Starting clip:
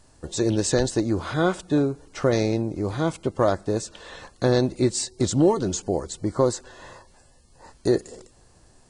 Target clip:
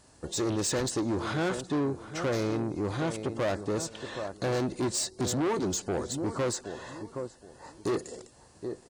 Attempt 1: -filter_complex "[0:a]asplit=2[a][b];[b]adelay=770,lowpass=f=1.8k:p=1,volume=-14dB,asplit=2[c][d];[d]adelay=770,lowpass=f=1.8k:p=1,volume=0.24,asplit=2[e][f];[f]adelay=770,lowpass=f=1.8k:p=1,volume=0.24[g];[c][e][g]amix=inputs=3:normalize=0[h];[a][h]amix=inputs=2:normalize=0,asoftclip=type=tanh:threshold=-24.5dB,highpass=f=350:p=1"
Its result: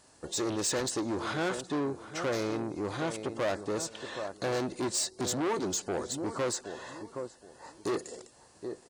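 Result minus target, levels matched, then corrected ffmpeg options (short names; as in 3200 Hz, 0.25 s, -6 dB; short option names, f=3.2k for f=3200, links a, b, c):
125 Hz band -5.0 dB
-filter_complex "[0:a]asplit=2[a][b];[b]adelay=770,lowpass=f=1.8k:p=1,volume=-14dB,asplit=2[c][d];[d]adelay=770,lowpass=f=1.8k:p=1,volume=0.24,asplit=2[e][f];[f]adelay=770,lowpass=f=1.8k:p=1,volume=0.24[g];[c][e][g]amix=inputs=3:normalize=0[h];[a][h]amix=inputs=2:normalize=0,asoftclip=type=tanh:threshold=-24.5dB,highpass=f=110:p=1"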